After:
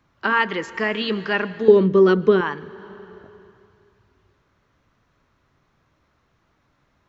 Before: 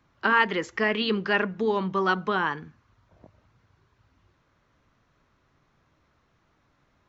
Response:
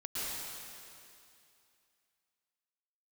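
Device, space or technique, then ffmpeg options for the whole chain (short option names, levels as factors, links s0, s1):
compressed reverb return: -filter_complex "[0:a]asettb=1/sr,asplit=3[s0][s1][s2];[s0]atrim=end=1.684[s3];[s1]atrim=start=1.68:end=2.41,asetpts=PTS-STARTPTS,afade=t=in:d=0.004:c=qsin,afade=t=out:st=0.726:d=0.004:c=qsin,lowshelf=f=600:t=q:w=3:g=8.5[s4];[s2]atrim=start=2.406[s5];[s3][s4]acrossfade=d=0.004:c1=hsin:c2=qsin[s6];[s6][s5]acrossfade=d=0.004:c1=qsin:c2=hsin,asplit=2[s7][s8];[1:a]atrim=start_sample=2205[s9];[s8][s9]afir=irnorm=-1:irlink=0,acompressor=threshold=0.112:ratio=6,volume=0.15[s10];[s7][s10]amix=inputs=2:normalize=0,volume=1.12"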